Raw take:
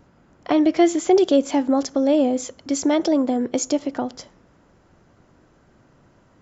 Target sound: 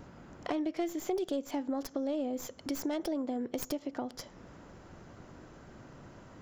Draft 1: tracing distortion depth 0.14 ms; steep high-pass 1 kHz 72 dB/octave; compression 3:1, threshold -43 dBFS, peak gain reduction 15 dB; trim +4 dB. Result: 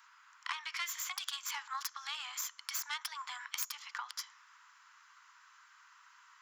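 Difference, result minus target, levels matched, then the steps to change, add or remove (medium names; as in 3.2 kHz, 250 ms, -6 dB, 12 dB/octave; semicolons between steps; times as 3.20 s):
1 kHz band +3.0 dB
remove: steep high-pass 1 kHz 72 dB/octave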